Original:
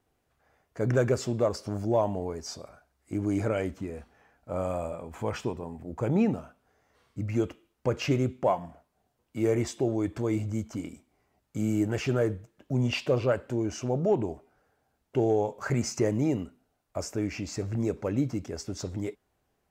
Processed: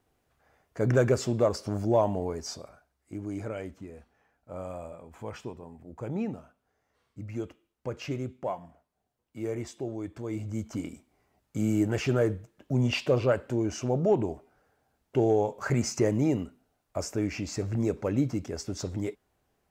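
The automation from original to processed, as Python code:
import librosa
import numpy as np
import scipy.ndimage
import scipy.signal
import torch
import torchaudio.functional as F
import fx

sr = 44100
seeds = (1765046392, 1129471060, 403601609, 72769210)

y = fx.gain(x, sr, db=fx.line((2.45, 1.5), (3.22, -7.5), (10.23, -7.5), (10.75, 1.0)))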